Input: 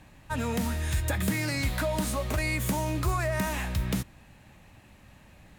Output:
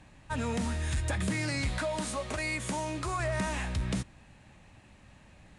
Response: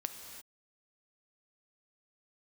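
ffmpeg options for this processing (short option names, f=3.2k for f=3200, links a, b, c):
-filter_complex "[0:a]asettb=1/sr,asplit=3[a][b][c];[a]atrim=end=1.784[d];[b]atrim=start=1.78:end=3.2,asetpts=PTS-STARTPTS,afade=t=in:d=0.004:c=qsin,afade=t=out:st=1.416:d=0.004:c=qsin,lowshelf=f=160:g=-11[e];[c]atrim=start=3.196[f];[d][e]acrossfade=d=0.004:c1=hsin:c2=qsin[g];[g][f]acrossfade=d=0.004:c1=qsin:c2=hsin,volume=23.5dB,asoftclip=hard,volume=-23.5dB,aresample=22050,aresample=44100,volume=-2dB"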